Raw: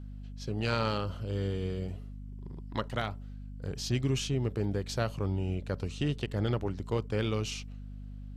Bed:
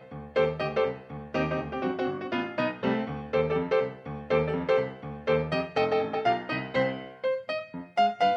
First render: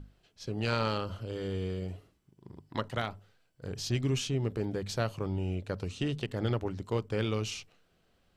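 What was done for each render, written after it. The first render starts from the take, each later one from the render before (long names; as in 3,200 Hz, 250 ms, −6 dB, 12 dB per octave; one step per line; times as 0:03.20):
mains-hum notches 50/100/150/200/250 Hz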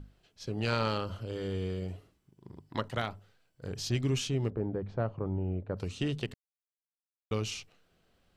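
0:04.50–0:05.77: low-pass filter 1,100 Hz
0:06.34–0:07.31: silence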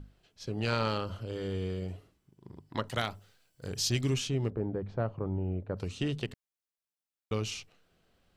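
0:02.88–0:04.14: high-shelf EQ 3,500 Hz +10.5 dB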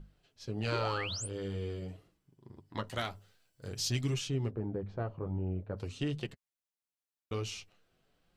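0:00.71–0:01.27: sound drawn into the spectrogram rise 290–10,000 Hz −36 dBFS
flanger 0.48 Hz, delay 5.6 ms, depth 6.9 ms, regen −29%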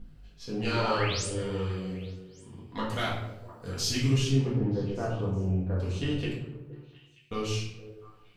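echo through a band-pass that steps 233 ms, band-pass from 160 Hz, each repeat 1.4 octaves, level −9.5 dB
rectangular room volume 210 cubic metres, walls mixed, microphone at 1.8 metres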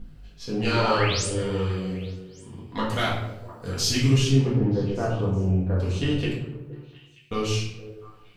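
level +5.5 dB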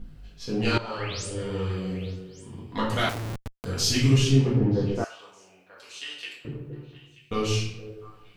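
0:00.78–0:02.10: fade in, from −16 dB
0:03.09–0:03.65: comparator with hysteresis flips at −33.5 dBFS
0:05.04–0:06.45: Bessel high-pass filter 2,200 Hz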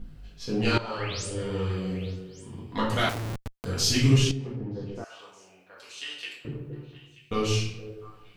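0:04.31–0:05.98: downward compressor 2 to 1, threshold −41 dBFS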